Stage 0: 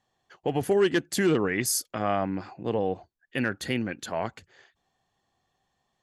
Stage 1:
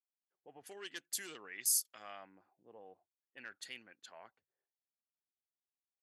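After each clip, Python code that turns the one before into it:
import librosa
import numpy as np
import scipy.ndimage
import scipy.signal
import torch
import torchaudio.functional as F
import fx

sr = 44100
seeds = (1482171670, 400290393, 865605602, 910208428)

y = np.diff(x, prepend=0.0)
y = fx.env_lowpass(y, sr, base_hz=320.0, full_db=-35.0)
y = F.gain(torch.from_numpy(y), -5.0).numpy()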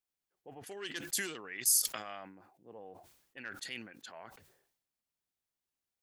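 y = fx.low_shelf(x, sr, hz=240.0, db=7.0)
y = fx.sustainer(y, sr, db_per_s=71.0)
y = F.gain(torch.from_numpy(y), 4.0).numpy()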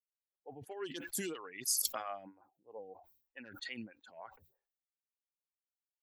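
y = fx.bin_expand(x, sr, power=1.5)
y = fx.stagger_phaser(y, sr, hz=3.1)
y = F.gain(torch.from_numpy(y), 6.5).numpy()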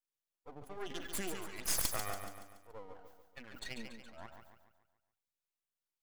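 y = np.maximum(x, 0.0)
y = fx.echo_feedback(y, sr, ms=142, feedback_pct=47, wet_db=-7)
y = F.gain(torch.from_numpy(y), 2.5).numpy()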